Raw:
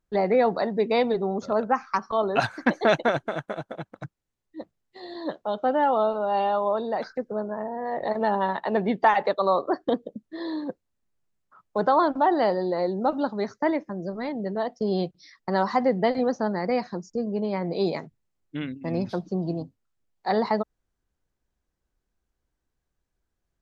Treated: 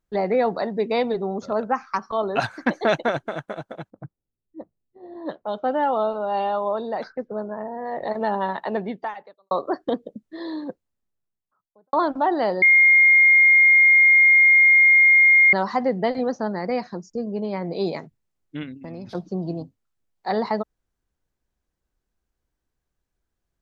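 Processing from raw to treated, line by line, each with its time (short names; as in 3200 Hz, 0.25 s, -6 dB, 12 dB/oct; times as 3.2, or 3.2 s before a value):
3.9–7.67 low-pass opened by the level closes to 340 Hz, open at -23 dBFS
8.68–9.51 fade out quadratic
10.57–11.93 studio fade out
12.62–15.53 bleep 2130 Hz -10.5 dBFS
18.63–19.15 compressor, threshold -32 dBFS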